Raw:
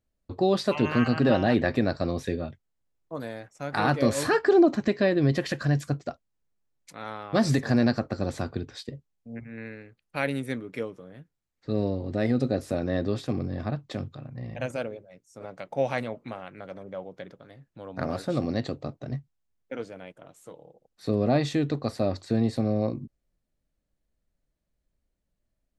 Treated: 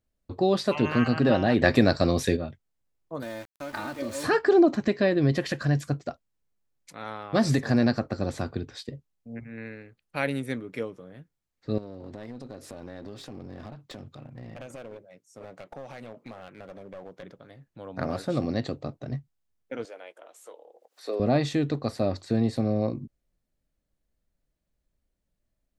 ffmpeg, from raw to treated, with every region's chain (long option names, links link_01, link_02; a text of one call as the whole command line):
ffmpeg -i in.wav -filter_complex "[0:a]asettb=1/sr,asplit=3[link_01][link_02][link_03];[link_01]atrim=end=1.624[link_04];[link_02]atrim=start=1.62:end=2.37,asetpts=PTS-STARTPTS,afade=type=in:duration=0.004:curve=qsin,afade=type=out:start_time=0.746:duration=0.004:curve=qsin,acontrast=28,highshelf=frequency=3700:gain=8.5[link_05];[link_03]atrim=start=2.366[link_06];[link_04][link_05]acrossfade=duration=0.004:curve1=hsin:curve2=qsin[link_07];[link_07][link_06]acrossfade=duration=0.004:curve1=qsin:curve2=hsin,asettb=1/sr,asplit=3[link_08][link_09][link_10];[link_08]atrim=end=3.224[link_11];[link_09]atrim=start=3.22:end=4.24,asetpts=PTS-STARTPTS,afade=type=in:duration=0.004:curve=qsin,afade=type=out:start_time=1.016:duration=0.004:curve=qsin,acompressor=threshold=-31dB:ratio=6:attack=3.2:release=140:knee=1:detection=peak,aecho=1:1:3.3:0.66,atrim=end_sample=44982,aeval=exprs='val(0)*gte(abs(val(0)),0.0075)':channel_layout=same[link_12];[link_10]atrim=start=4.236[link_13];[link_11][link_12]acrossfade=duration=0.004:curve1=hsin:curve2=qsin[link_14];[link_14][link_13]acrossfade=duration=0.004:curve1=qsin:curve2=hsin,asettb=1/sr,asplit=3[link_15][link_16][link_17];[link_15]atrim=end=11.784[link_18];[link_16]atrim=start=11.78:end=17.23,asetpts=PTS-STARTPTS,afade=type=in:duration=0.004:curve=qsin,afade=type=out:start_time=5.446:duration=0.004:curve=qsin,highpass=frequency=170:poles=1,acompressor=threshold=-35dB:ratio=8:attack=3.2:release=140:knee=1:detection=peak,aeval=exprs='clip(val(0),-1,0.00841)':channel_layout=same[link_19];[link_17]atrim=start=17.226[link_20];[link_18][link_19]acrossfade=duration=0.004:curve1=hsin:curve2=qsin[link_21];[link_21][link_20]acrossfade=duration=0.004:curve1=qsin:curve2=hsin,asettb=1/sr,asplit=3[link_22][link_23][link_24];[link_22]atrim=end=19.854[link_25];[link_23]atrim=start=19.85:end=21.2,asetpts=PTS-STARTPTS,afade=type=in:duration=0.004:curve=qsin,afade=type=out:start_time=1.346:duration=0.004:curve=qsin,highpass=frequency=400:width=0.5412,highpass=frequency=400:width=1.3066,acompressor=mode=upward:threshold=-46dB:ratio=2.5:attack=3.2:release=140:knee=2.83:detection=peak,asplit=2[link_26][link_27];[link_27]adelay=17,volume=-14dB[link_28];[link_26][link_28]amix=inputs=2:normalize=0,atrim=end_sample=59535[link_29];[link_24]atrim=start=21.196[link_30];[link_25][link_29]acrossfade=duration=0.004:curve1=hsin:curve2=qsin[link_31];[link_31][link_30]acrossfade=duration=0.004:curve1=qsin:curve2=hsin" out.wav